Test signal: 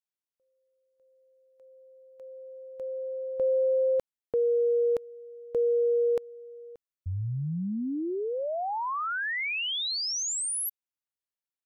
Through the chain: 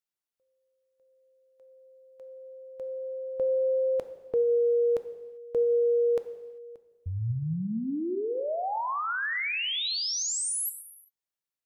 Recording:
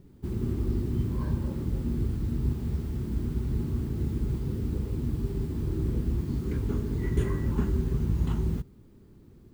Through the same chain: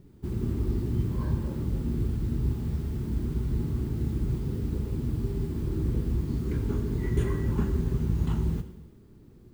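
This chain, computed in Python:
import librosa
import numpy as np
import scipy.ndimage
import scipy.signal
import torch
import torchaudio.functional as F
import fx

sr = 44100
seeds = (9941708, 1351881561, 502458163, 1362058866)

y = fx.rev_gated(x, sr, seeds[0], gate_ms=420, shape='falling', drr_db=9.0)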